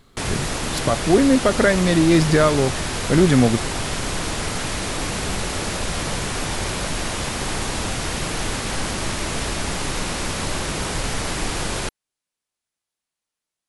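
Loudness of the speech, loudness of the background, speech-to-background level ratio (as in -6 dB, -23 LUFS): -18.0 LUFS, -25.0 LUFS, 7.0 dB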